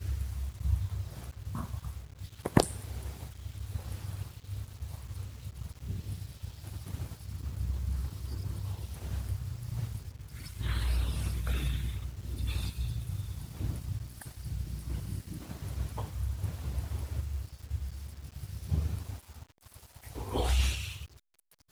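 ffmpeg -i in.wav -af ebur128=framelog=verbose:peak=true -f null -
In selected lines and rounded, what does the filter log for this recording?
Integrated loudness:
  I:         -37.1 LUFS
  Threshold: -47.3 LUFS
Loudness range:
  LRA:         6.4 LU
  Threshold: -57.5 LUFS
  LRA low:   -41.7 LUFS
  LRA high:  -35.3 LUFS
True peak:
  Peak:       -4.7 dBFS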